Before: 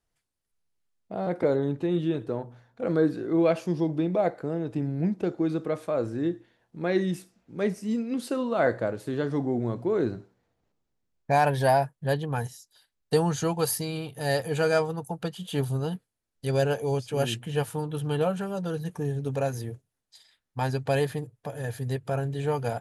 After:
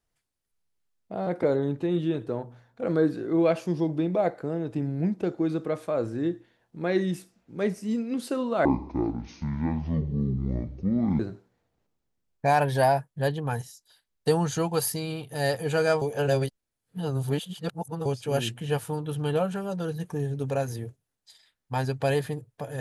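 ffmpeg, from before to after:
ffmpeg -i in.wav -filter_complex "[0:a]asplit=5[link_01][link_02][link_03][link_04][link_05];[link_01]atrim=end=8.654[link_06];[link_02]atrim=start=8.65:end=10.05,asetpts=PTS-STARTPTS,asetrate=24255,aresample=44100[link_07];[link_03]atrim=start=10.046:end=14.872[link_08];[link_04]atrim=start=14.868:end=16.912,asetpts=PTS-STARTPTS,areverse[link_09];[link_05]atrim=start=16.908[link_10];[link_06][link_07]acrossfade=duration=0.004:curve1=hsin:curve2=hsin[link_11];[link_11][link_08]acrossfade=duration=0.004:curve1=hsin:curve2=hsin[link_12];[link_12][link_09]acrossfade=duration=0.004:curve1=hsin:curve2=hsin[link_13];[link_13][link_10]acrossfade=duration=0.004:curve1=hsin:curve2=hsin" out.wav

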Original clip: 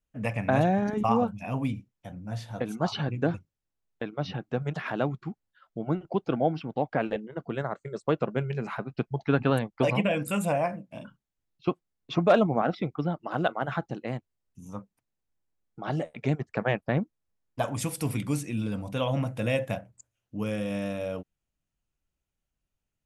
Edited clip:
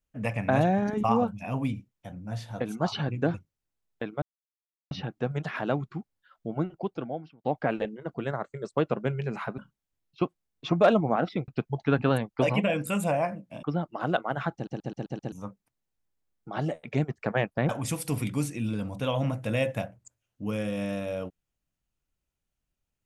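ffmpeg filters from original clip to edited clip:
ffmpeg -i in.wav -filter_complex "[0:a]asplit=13[link_01][link_02][link_03][link_04][link_05][link_06][link_07][link_08][link_09][link_10][link_11][link_12][link_13];[link_01]atrim=end=4.22,asetpts=PTS-STARTPTS,afade=type=out:start_time=4.216:duration=0.004:curve=hsin,apad=pad_dur=0.69[link_14];[link_02]atrim=start=4.22:end=6.75,asetpts=PTS-STARTPTS,afade=type=in:duration=0.004:curve=hsin,afade=type=out:start_time=1.61:duration=0.92[link_15];[link_03]atrim=start=6.75:end=8.892,asetpts=PTS-STARTPTS,afade=type=in:duration=0.004:curve=hsin[link_16];[link_04]atrim=start=11.038:end=12.942[link_17];[link_05]atrim=start=8.888:end=11.042[link_18];[link_06]atrim=start=12.938:end=13.982[link_19];[link_07]atrim=start=13.848:end=13.982[link_20];[link_08]atrim=start=13.848:end=13.982[link_21];[link_09]atrim=start=13.848:end=13.982[link_22];[link_10]atrim=start=13.848:end=13.982[link_23];[link_11]atrim=start=13.848:end=13.982[link_24];[link_12]atrim=start=14.628:end=17.002[link_25];[link_13]atrim=start=17.618[link_26];[link_14][link_15][link_16]concat=n=3:v=0:a=1[link_27];[link_27][link_17]acrossfade=duration=0.004:curve1=hsin:curve2=hsin[link_28];[link_28][link_18]acrossfade=duration=0.004:curve1=hsin:curve2=hsin[link_29];[link_29][link_19]acrossfade=duration=0.004:curve1=hsin:curve2=hsin[link_30];[link_30][link_20]acrossfade=duration=0.004:curve1=hsin:curve2=hsin[link_31];[link_31][link_21]acrossfade=duration=0.004:curve1=hsin:curve2=hsin[link_32];[link_32][link_22]acrossfade=duration=0.004:curve1=hsin:curve2=hsin[link_33];[link_33][link_23]acrossfade=duration=0.004:curve1=hsin:curve2=hsin[link_34];[link_34][link_24]acrossfade=duration=0.004:curve1=hsin:curve2=hsin[link_35];[link_35][link_25]acrossfade=duration=0.004:curve1=hsin:curve2=hsin[link_36];[link_36][link_26]acrossfade=duration=0.004:curve1=hsin:curve2=hsin" out.wav

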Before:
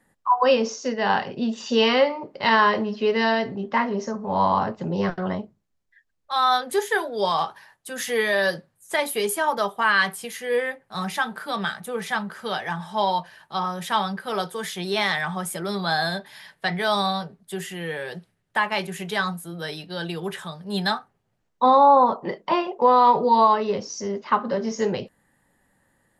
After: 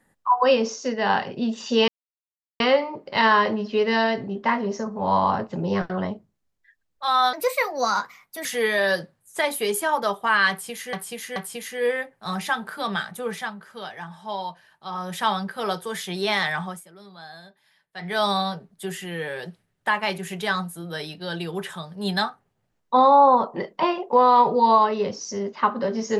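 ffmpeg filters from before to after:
ffmpeg -i in.wav -filter_complex "[0:a]asplit=10[link_01][link_02][link_03][link_04][link_05][link_06][link_07][link_08][link_09][link_10];[link_01]atrim=end=1.88,asetpts=PTS-STARTPTS,afade=type=out:start_time=1.876:duration=0.004:curve=hsin,apad=pad_dur=0.72[link_11];[link_02]atrim=start=1.88:end=6.614,asetpts=PTS-STARTPTS,afade=type=in:duration=0.004:curve=hsin[link_12];[link_03]atrim=start=6.61:end=8,asetpts=PTS-STARTPTS,asetrate=54684,aresample=44100[link_13];[link_04]atrim=start=7.996:end=10.482[link_14];[link_05]atrim=start=10.048:end=10.482[link_15];[link_06]atrim=start=10.048:end=12.2,asetpts=PTS-STARTPTS,afade=type=out:start_time=1.952:duration=0.2:silence=0.398107[link_16];[link_07]atrim=start=12.2:end=13.58,asetpts=PTS-STARTPTS,volume=-8dB[link_17];[link_08]atrim=start=13.58:end=15.53,asetpts=PTS-STARTPTS,afade=type=in:duration=0.2:silence=0.398107,afade=type=out:start_time=1.7:duration=0.25:silence=0.112202[link_18];[link_09]atrim=start=15.53:end=16.63,asetpts=PTS-STARTPTS,volume=-19dB[link_19];[link_10]atrim=start=16.63,asetpts=PTS-STARTPTS,afade=type=in:duration=0.25:silence=0.112202[link_20];[link_11][link_12]concat=n=2:v=0:a=1[link_21];[link_21][link_13]acrossfade=duration=0.004:curve1=hsin:curve2=hsin[link_22];[link_22][link_14]acrossfade=duration=0.004:curve1=hsin:curve2=hsin[link_23];[link_23][link_15]acrossfade=duration=0.004:curve1=hsin:curve2=hsin[link_24];[link_16][link_17][link_18][link_19][link_20]concat=n=5:v=0:a=1[link_25];[link_24][link_25]acrossfade=duration=0.004:curve1=hsin:curve2=hsin" out.wav

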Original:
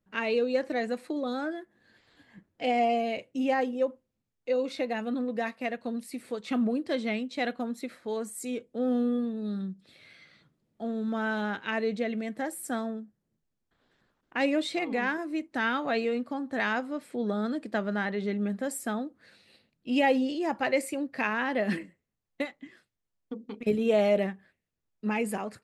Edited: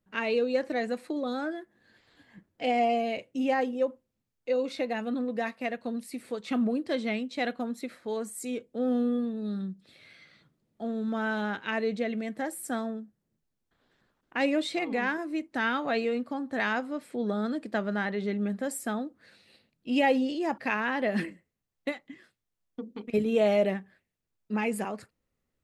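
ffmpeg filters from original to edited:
ffmpeg -i in.wav -filter_complex "[0:a]asplit=2[link_01][link_02];[link_01]atrim=end=20.582[link_03];[link_02]atrim=start=21.108[link_04];[link_03][link_04]acrossfade=duration=0.004:curve1=hsin:curve2=hsin" out.wav

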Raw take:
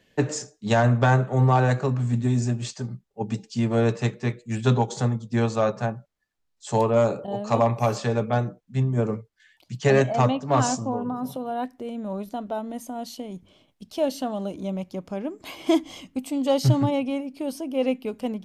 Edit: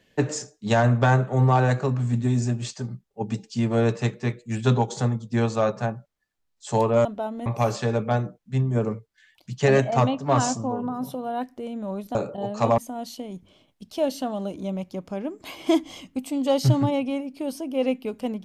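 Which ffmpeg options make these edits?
ffmpeg -i in.wav -filter_complex "[0:a]asplit=5[link_01][link_02][link_03][link_04][link_05];[link_01]atrim=end=7.052[link_06];[link_02]atrim=start=12.368:end=12.782[link_07];[link_03]atrim=start=7.678:end=12.372[link_08];[link_04]atrim=start=7.048:end=7.682[link_09];[link_05]atrim=start=12.778[link_10];[link_06][link_07]acrossfade=duration=0.004:curve1=hsin:curve2=hsin[link_11];[link_11][link_08]acrossfade=duration=0.004:curve1=hsin:curve2=hsin[link_12];[link_12][link_09]acrossfade=duration=0.004:curve1=hsin:curve2=hsin[link_13];[link_13][link_10]acrossfade=duration=0.004:curve1=hsin:curve2=hsin" out.wav

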